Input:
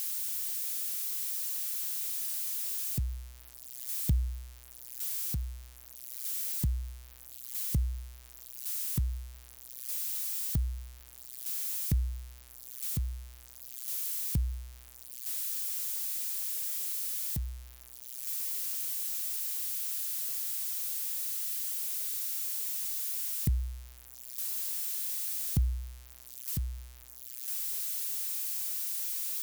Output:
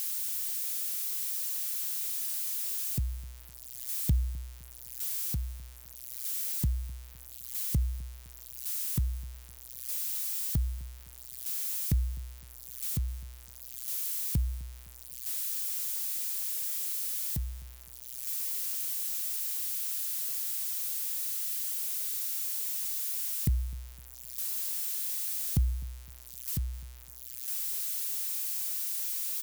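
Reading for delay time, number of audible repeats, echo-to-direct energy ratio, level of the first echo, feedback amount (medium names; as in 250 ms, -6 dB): 256 ms, 2, -21.5 dB, -22.5 dB, 41%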